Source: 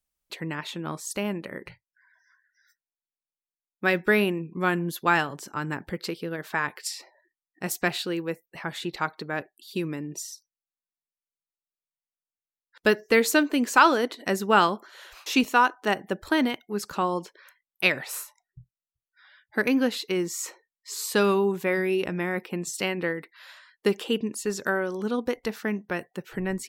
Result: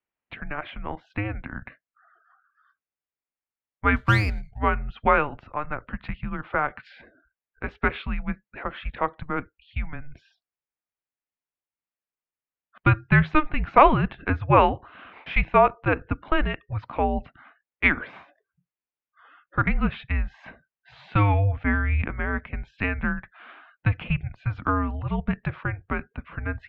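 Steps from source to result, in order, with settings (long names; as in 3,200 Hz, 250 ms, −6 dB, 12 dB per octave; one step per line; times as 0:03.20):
single-sideband voice off tune −300 Hz 270–3,000 Hz
0:03.96–0:04.58: windowed peak hold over 5 samples
level +3 dB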